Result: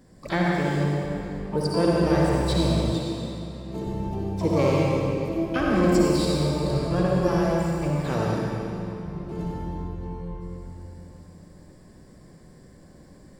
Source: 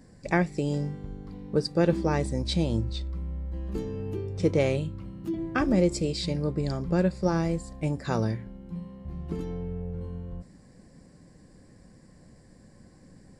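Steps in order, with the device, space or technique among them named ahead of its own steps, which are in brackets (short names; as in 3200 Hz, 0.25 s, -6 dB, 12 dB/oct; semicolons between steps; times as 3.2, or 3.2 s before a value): shimmer-style reverb (harmoniser +12 st -10 dB; reverb RT60 2.9 s, pre-delay 53 ms, DRR -4 dB); 2.92–3.87 HPF 130 Hz 12 dB/oct; gain -2 dB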